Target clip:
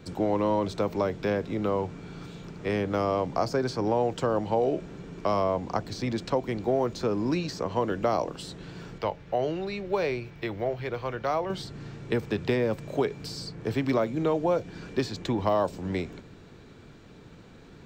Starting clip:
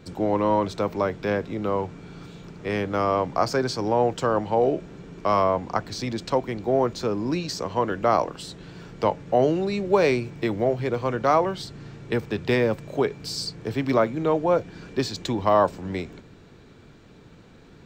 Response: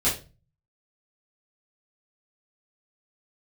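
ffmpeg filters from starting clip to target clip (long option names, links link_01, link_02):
-filter_complex "[0:a]asettb=1/sr,asplit=3[link_01][link_02][link_03];[link_01]atrim=end=8.984[link_04];[link_02]atrim=start=8.98:end=11.5,asetpts=PTS-STARTPTS,afade=type=in:duration=0.004:curve=qsin,afade=type=out:start_time=2.516:duration=0.004:curve=qsin,equalizer=frequency=125:width_type=o:width=1:gain=-5,equalizer=frequency=250:width_type=o:width=1:gain=-10,equalizer=frequency=500:width_type=o:width=1:gain=-4,equalizer=frequency=1000:width_type=o:width=1:gain=-3,equalizer=frequency=8000:width_type=o:width=1:gain=-12[link_05];[link_03]atrim=start=11.496[link_06];[link_04][link_05]acrossfade=duration=0.004:curve1=hsin:curve2=qsin[link_07];[link_07][link_06]acrossfade=duration=0.004:curve1=qsin:curve2=hsin,acrossover=split=840|2600[link_08][link_09][link_10];[link_08]acompressor=threshold=-22dB:ratio=4[link_11];[link_09]acompressor=threshold=-37dB:ratio=4[link_12];[link_10]acompressor=threshold=-41dB:ratio=4[link_13];[link_11][link_12][link_13]amix=inputs=3:normalize=0"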